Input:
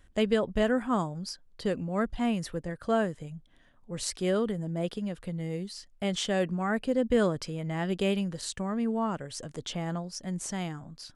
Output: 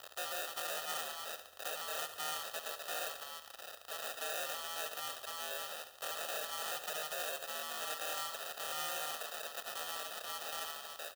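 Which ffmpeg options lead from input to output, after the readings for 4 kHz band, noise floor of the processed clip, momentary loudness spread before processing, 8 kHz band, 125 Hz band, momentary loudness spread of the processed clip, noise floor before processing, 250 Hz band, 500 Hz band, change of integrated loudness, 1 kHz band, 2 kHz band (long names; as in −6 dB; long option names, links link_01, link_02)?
−1.5 dB, −55 dBFS, 11 LU, −1.0 dB, −34.0 dB, 5 LU, −60 dBFS, −34.5 dB, −15.5 dB, −9.0 dB, −6.0 dB, −3.5 dB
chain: -filter_complex "[0:a]aeval=exprs='val(0)+0.5*0.0237*sgn(val(0))':channel_layout=same,acrusher=samples=41:mix=1:aa=0.000001,acrossover=split=380 4000:gain=0.0891 1 0.112[link_01][link_02][link_03];[link_01][link_02][link_03]amix=inputs=3:normalize=0,alimiter=level_in=1dB:limit=-24dB:level=0:latency=1:release=20,volume=-1dB,acontrast=85,aeval=exprs='val(0)*sin(2*PI*79*n/s)':channel_layout=same,asoftclip=type=tanh:threshold=-23.5dB,acrusher=bits=6:mode=log:mix=0:aa=0.000001,asuperstop=centerf=2200:order=4:qfactor=2.5,aderivative,aecho=1:1:1.6:0.54,aecho=1:1:71|142|213|284|355|426|497:0.282|0.163|0.0948|0.055|0.0319|0.0185|0.0107,volume=7dB"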